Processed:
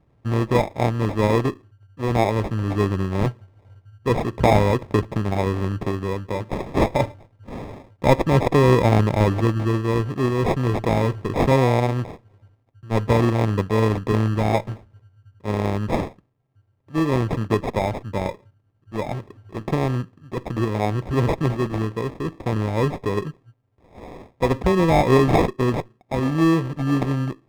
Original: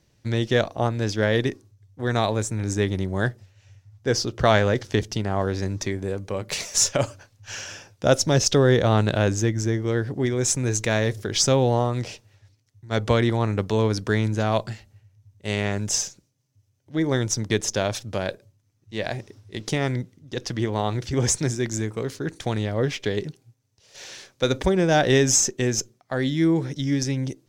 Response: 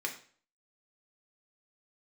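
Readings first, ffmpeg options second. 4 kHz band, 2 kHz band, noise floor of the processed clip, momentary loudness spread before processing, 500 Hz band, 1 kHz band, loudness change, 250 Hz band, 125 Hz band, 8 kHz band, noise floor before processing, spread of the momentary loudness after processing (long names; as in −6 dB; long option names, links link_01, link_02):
−7.0 dB, −1.5 dB, −63 dBFS, 12 LU, +2.0 dB, +5.0 dB, +2.0 dB, +3.0 dB, +3.0 dB, −18.5 dB, −66 dBFS, 12 LU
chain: -af "acrusher=samples=30:mix=1:aa=0.000001,lowpass=frequency=1500:poles=1,volume=3dB"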